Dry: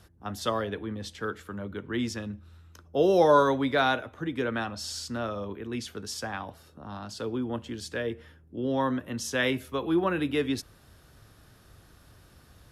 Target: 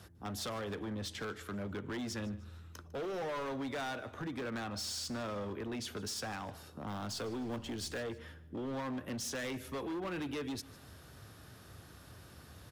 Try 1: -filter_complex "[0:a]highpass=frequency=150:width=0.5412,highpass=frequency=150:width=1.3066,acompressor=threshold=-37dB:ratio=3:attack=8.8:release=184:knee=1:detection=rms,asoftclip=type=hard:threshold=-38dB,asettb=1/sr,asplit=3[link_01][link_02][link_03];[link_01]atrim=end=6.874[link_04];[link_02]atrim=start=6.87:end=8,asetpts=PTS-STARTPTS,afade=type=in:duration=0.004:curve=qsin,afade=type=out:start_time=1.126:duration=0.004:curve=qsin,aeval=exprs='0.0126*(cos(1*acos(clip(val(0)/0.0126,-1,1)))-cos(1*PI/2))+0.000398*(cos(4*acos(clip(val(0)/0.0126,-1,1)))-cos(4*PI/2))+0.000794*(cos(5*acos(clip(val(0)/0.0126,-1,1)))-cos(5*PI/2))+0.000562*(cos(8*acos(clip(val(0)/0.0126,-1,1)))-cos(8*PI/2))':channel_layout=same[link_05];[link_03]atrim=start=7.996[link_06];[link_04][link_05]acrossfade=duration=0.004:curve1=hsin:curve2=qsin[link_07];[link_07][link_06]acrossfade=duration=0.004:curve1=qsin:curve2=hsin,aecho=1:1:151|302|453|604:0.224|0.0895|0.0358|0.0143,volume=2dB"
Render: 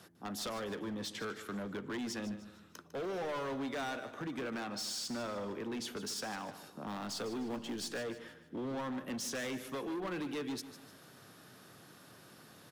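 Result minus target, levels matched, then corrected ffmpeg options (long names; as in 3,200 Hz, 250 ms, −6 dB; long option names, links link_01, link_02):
125 Hz band −5.0 dB; echo-to-direct +7 dB
-filter_complex "[0:a]highpass=frequency=63:width=0.5412,highpass=frequency=63:width=1.3066,acompressor=threshold=-37dB:ratio=3:attack=8.8:release=184:knee=1:detection=rms,asoftclip=type=hard:threshold=-38dB,asettb=1/sr,asplit=3[link_01][link_02][link_03];[link_01]atrim=end=6.874[link_04];[link_02]atrim=start=6.87:end=8,asetpts=PTS-STARTPTS,afade=type=in:duration=0.004:curve=qsin,afade=type=out:start_time=1.126:duration=0.004:curve=qsin,aeval=exprs='0.0126*(cos(1*acos(clip(val(0)/0.0126,-1,1)))-cos(1*PI/2))+0.000398*(cos(4*acos(clip(val(0)/0.0126,-1,1)))-cos(4*PI/2))+0.000794*(cos(5*acos(clip(val(0)/0.0126,-1,1)))-cos(5*PI/2))+0.000562*(cos(8*acos(clip(val(0)/0.0126,-1,1)))-cos(8*PI/2))':channel_layout=same[link_05];[link_03]atrim=start=7.996[link_06];[link_04][link_05]acrossfade=duration=0.004:curve1=hsin:curve2=qsin[link_07];[link_07][link_06]acrossfade=duration=0.004:curve1=qsin:curve2=hsin,aecho=1:1:151|302|453:0.1|0.04|0.016,volume=2dB"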